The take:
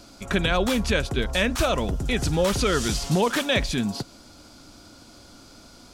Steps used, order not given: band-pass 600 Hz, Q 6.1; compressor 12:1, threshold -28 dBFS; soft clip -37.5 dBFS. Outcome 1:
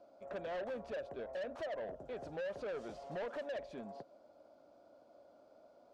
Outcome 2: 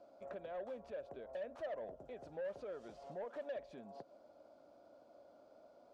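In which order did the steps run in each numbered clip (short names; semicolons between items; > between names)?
band-pass > compressor > soft clip; compressor > band-pass > soft clip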